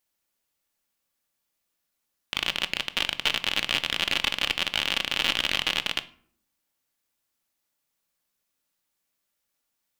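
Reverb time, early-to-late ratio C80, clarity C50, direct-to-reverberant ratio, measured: 0.60 s, 22.5 dB, 18.0 dB, 9.5 dB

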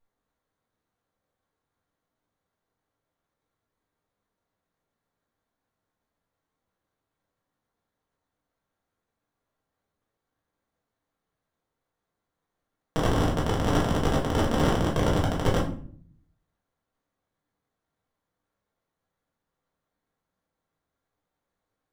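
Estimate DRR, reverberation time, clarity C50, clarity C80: -4.5 dB, 0.50 s, 7.0 dB, 11.5 dB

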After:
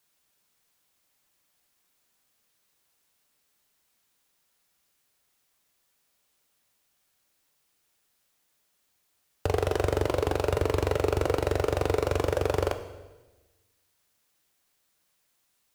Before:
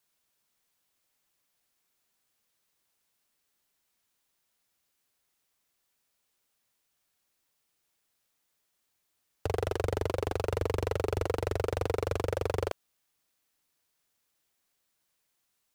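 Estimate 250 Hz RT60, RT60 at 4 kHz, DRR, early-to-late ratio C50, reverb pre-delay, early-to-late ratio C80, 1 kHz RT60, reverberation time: 1.4 s, 1.1 s, 8.0 dB, 11.0 dB, 3 ms, 13.0 dB, 1.1 s, 1.2 s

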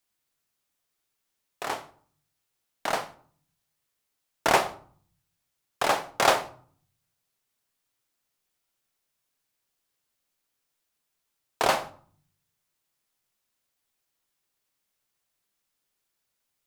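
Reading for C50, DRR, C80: 16.0 dB, 9.5 dB, 20.0 dB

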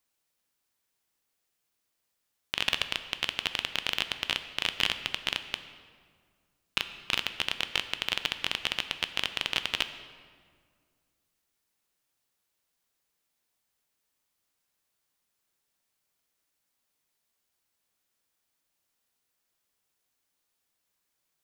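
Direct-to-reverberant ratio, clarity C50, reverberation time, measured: 9.5 dB, 11.0 dB, 1.9 s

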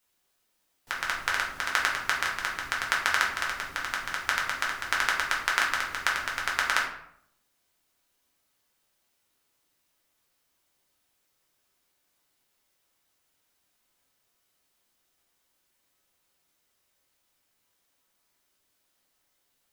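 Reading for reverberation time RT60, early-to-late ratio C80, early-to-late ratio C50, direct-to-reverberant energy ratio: 0.70 s, 8.5 dB, 5.0 dB, -3.5 dB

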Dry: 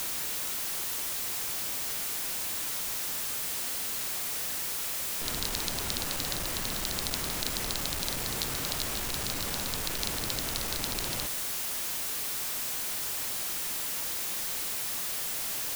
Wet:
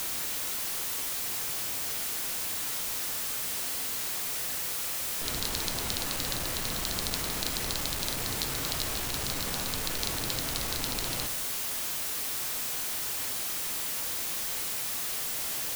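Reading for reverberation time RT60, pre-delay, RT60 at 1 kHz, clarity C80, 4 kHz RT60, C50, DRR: 0.80 s, 4 ms, 0.85 s, 15.0 dB, 0.50 s, 12.5 dB, 8.0 dB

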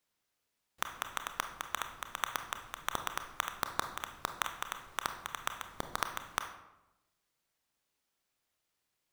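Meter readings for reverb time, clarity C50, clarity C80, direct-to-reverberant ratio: 0.95 s, 9.0 dB, 11.5 dB, 6.5 dB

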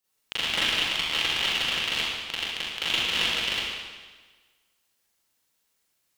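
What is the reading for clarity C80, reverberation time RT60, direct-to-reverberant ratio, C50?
-1.0 dB, 1.4 s, -11.0 dB, -3.5 dB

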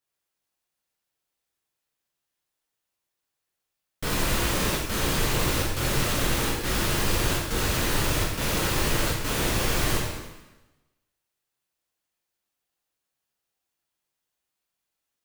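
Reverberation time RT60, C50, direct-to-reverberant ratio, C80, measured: 1.1 s, 1.5 dB, -4.0 dB, 4.0 dB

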